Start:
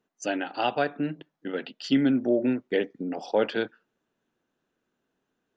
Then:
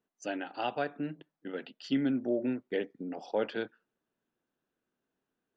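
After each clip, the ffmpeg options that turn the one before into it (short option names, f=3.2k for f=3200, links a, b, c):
-af "highshelf=f=4.9k:g=-5,volume=-7dB"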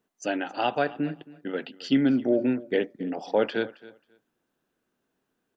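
-af "aecho=1:1:270|540:0.1|0.017,volume=7.5dB"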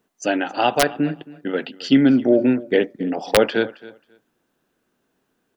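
-af "aeval=exprs='(mod(3.76*val(0)+1,2)-1)/3.76':c=same,volume=7.5dB"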